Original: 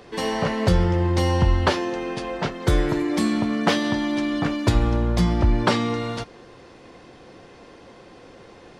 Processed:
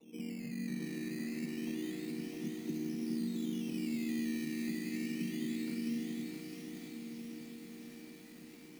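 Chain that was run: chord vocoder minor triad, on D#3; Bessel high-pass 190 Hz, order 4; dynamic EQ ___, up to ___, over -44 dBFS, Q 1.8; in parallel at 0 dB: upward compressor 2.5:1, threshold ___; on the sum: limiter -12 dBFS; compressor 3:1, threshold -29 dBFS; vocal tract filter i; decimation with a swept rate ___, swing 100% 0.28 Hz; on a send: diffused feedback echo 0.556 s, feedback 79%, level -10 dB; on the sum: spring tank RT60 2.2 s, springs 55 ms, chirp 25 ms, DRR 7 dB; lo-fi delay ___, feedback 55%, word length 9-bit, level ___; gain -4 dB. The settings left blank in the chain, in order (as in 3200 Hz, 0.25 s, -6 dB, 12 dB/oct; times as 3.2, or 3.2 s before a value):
630 Hz, -5 dB, -46 dBFS, 14×, 0.662 s, -4 dB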